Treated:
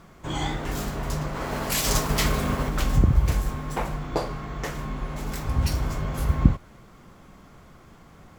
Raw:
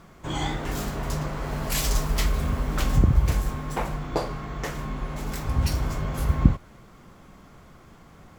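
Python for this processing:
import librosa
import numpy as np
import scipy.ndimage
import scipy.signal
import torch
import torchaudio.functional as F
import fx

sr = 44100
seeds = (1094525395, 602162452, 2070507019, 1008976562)

y = fx.spec_clip(x, sr, under_db=12, at=(1.34, 2.68), fade=0.02)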